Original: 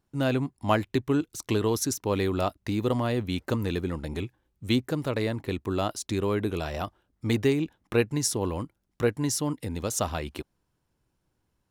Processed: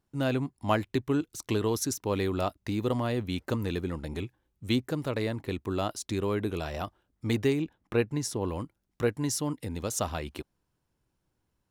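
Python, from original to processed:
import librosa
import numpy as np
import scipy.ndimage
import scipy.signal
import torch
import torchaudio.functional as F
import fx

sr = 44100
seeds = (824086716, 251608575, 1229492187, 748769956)

y = fx.high_shelf(x, sr, hz=3700.0, db=-7.0, at=(7.62, 8.48))
y = F.gain(torch.from_numpy(y), -2.5).numpy()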